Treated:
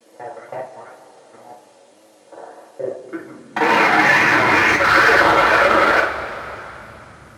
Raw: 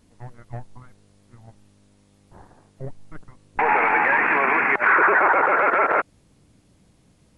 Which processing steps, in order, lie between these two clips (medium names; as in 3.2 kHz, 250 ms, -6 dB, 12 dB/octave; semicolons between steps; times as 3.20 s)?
time reversed locally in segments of 40 ms; in parallel at +1.5 dB: peak limiter -19.5 dBFS, peak gain reduction 11.5 dB; on the sum: one-sided clip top -15.5 dBFS, bottom -11 dBFS; wow and flutter 140 cents; two-slope reverb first 0.25 s, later 3.3 s, from -19 dB, DRR -4.5 dB; high-pass sweep 510 Hz -> 62 Hz, 2.78–4.91 s; trim -2 dB